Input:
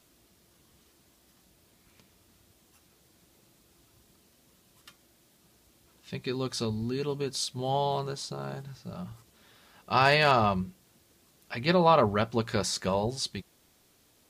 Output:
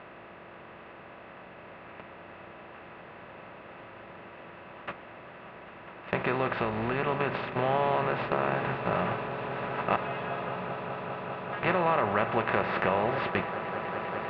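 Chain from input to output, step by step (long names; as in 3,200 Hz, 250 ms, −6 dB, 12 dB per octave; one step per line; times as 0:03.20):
compressor on every frequency bin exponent 0.4
Butterworth low-pass 2,800 Hz 36 dB per octave
low-shelf EQ 220 Hz −6.5 dB
noise gate −31 dBFS, range −13 dB
downward compressor 3 to 1, threshold −26 dBFS, peak gain reduction 9.5 dB
0:06.53–0:07.07: amplitude modulation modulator 280 Hz, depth 25%
0:09.96–0:11.63: stiff-string resonator 170 Hz, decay 0.36 s, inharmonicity 0.002
echo that builds up and dies away 199 ms, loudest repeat 8, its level −16 dB
level +1.5 dB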